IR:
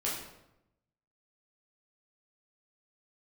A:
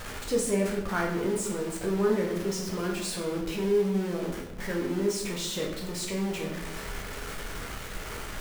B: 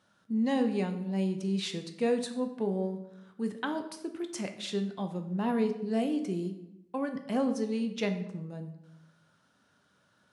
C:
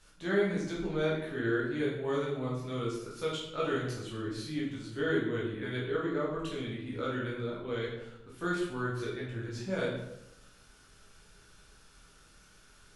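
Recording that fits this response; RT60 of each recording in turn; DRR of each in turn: C; 0.90 s, 0.90 s, 0.85 s; -1.5 dB, 6.0 dB, -6.5 dB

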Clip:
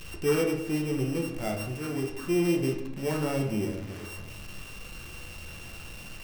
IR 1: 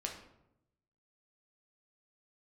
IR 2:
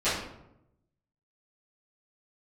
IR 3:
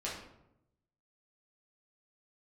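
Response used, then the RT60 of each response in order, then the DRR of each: 1; 0.85 s, 0.85 s, 0.85 s; 0.5 dB, -16.5 dB, -7.0 dB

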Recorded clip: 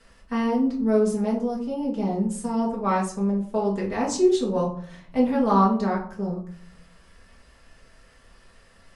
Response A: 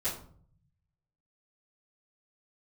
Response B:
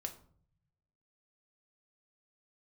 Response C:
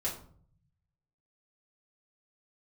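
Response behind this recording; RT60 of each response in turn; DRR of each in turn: C; 0.55 s, 0.55 s, 0.55 s; -13.0 dB, 4.0 dB, -5.5 dB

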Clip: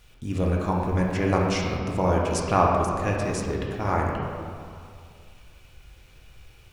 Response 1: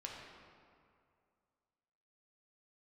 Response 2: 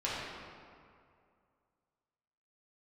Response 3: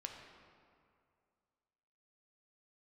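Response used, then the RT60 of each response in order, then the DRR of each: 1; 2.3 s, 2.3 s, 2.3 s; -2.0 dB, -8.5 dB, 2.0 dB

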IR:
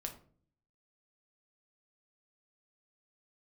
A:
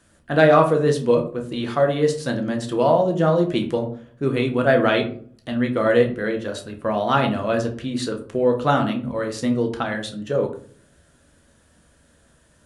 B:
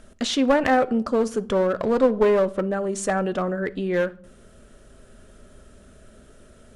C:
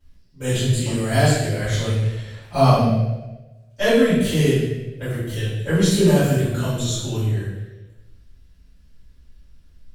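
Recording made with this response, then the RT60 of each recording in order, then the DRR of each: A; 0.45 s, 0.65 s, 1.1 s; 3.0 dB, 13.0 dB, -14.5 dB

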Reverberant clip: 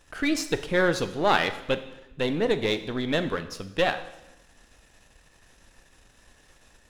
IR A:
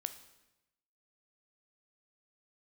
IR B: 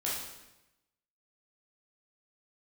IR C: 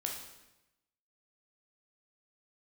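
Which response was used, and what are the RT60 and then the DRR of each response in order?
A; 0.95 s, 0.95 s, 0.95 s; 9.5 dB, -6.5 dB, 0.0 dB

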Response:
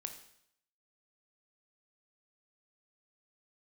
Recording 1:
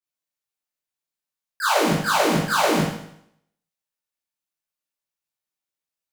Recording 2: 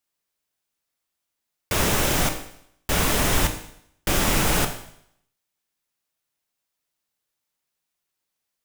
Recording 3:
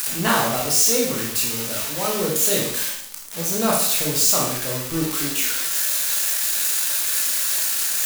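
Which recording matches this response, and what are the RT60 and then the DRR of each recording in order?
2; 0.70 s, 0.70 s, 0.70 s; -13.0 dB, 6.0 dB, -3.5 dB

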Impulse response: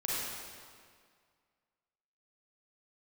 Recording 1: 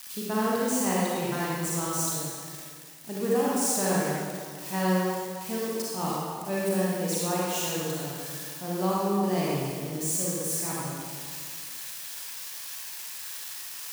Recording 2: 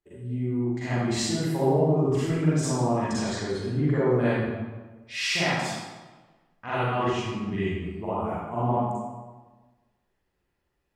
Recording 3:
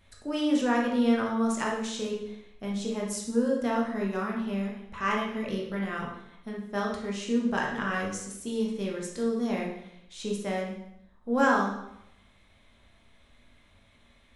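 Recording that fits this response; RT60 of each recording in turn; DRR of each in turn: 1; 2.0 s, 1.3 s, 0.80 s; -7.0 dB, -12.0 dB, -2.0 dB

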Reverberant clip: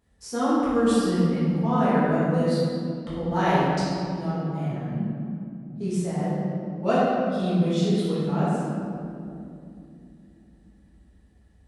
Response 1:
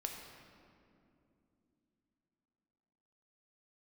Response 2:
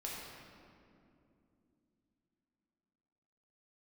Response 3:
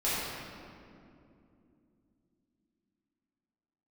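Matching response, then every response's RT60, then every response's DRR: 3; 2.8 s, 2.7 s, 2.7 s; 1.5 dB, -5.0 dB, -11.5 dB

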